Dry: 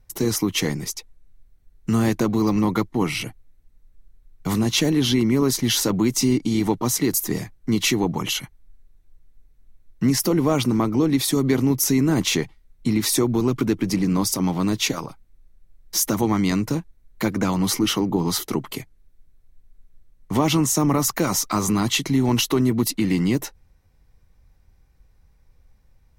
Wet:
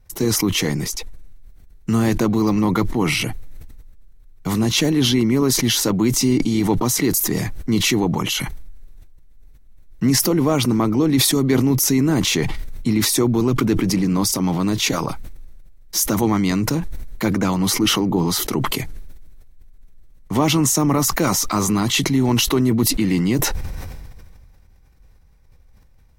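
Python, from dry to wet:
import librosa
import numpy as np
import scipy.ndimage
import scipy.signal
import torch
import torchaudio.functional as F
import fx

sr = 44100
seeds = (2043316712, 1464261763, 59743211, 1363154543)

y = fx.sustainer(x, sr, db_per_s=26.0)
y = F.gain(torch.from_numpy(y), 1.5).numpy()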